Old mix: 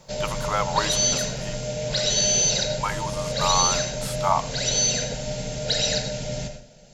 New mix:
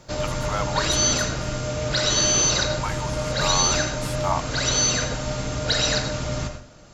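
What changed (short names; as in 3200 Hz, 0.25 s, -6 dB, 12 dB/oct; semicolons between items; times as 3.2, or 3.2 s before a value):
speech -3.5 dB; background: remove fixed phaser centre 310 Hz, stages 6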